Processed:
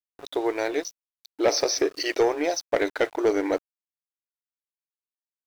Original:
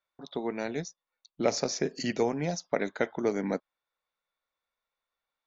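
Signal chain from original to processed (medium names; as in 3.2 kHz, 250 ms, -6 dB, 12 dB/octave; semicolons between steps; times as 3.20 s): FFT band-pass 290–6300 Hz; waveshaping leveller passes 2; small samples zeroed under -48 dBFS; trim +1 dB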